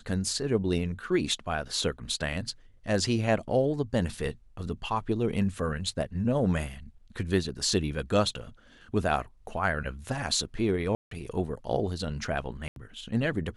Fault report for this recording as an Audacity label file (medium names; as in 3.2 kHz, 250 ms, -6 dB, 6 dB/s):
10.950000	11.110000	dropout 163 ms
12.680000	12.760000	dropout 82 ms